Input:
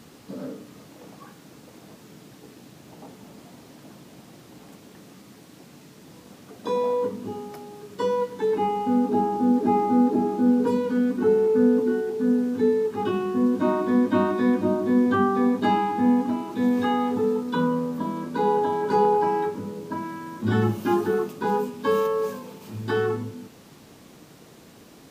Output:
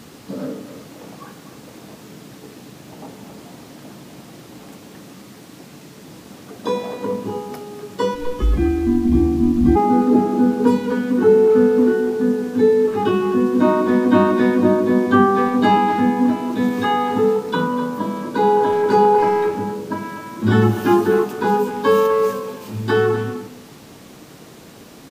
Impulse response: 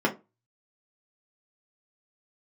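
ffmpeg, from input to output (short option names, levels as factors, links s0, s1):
-filter_complex "[0:a]bandreject=f=81.97:t=h:w=4,bandreject=f=163.94:t=h:w=4,bandreject=f=245.91:t=h:w=4,bandreject=f=327.88:t=h:w=4,bandreject=f=409.85:t=h:w=4,bandreject=f=491.82:t=h:w=4,bandreject=f=573.79:t=h:w=4,bandreject=f=655.76:t=h:w=4,bandreject=f=737.73:t=h:w=4,bandreject=f=819.7:t=h:w=4,bandreject=f=901.67:t=h:w=4,bandreject=f=983.64:t=h:w=4,bandreject=f=1065.61:t=h:w=4,asplit=3[s0][s1][s2];[s0]afade=t=out:st=8.14:d=0.02[s3];[s1]afreqshift=-490,afade=t=in:st=8.14:d=0.02,afade=t=out:st=9.75:d=0.02[s4];[s2]afade=t=in:st=9.75:d=0.02[s5];[s3][s4][s5]amix=inputs=3:normalize=0,asplit=2[s6][s7];[s7]adelay=250,highpass=300,lowpass=3400,asoftclip=type=hard:threshold=0.106,volume=0.316[s8];[s6][s8]amix=inputs=2:normalize=0,volume=2.37"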